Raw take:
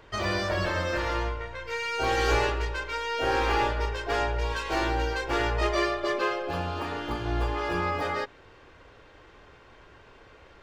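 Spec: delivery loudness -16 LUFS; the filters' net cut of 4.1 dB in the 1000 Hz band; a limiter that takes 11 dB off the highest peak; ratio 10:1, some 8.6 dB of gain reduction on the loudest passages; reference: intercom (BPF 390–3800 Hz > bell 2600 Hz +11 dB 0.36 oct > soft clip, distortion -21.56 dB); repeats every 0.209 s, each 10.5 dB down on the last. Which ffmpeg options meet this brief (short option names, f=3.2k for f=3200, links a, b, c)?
-af "equalizer=f=1k:t=o:g=-5.5,acompressor=threshold=-30dB:ratio=10,alimiter=level_in=7.5dB:limit=-24dB:level=0:latency=1,volume=-7.5dB,highpass=390,lowpass=3.8k,equalizer=f=2.6k:t=o:w=0.36:g=11,aecho=1:1:209|418|627:0.299|0.0896|0.0269,asoftclip=threshold=-31dB,volume=24dB"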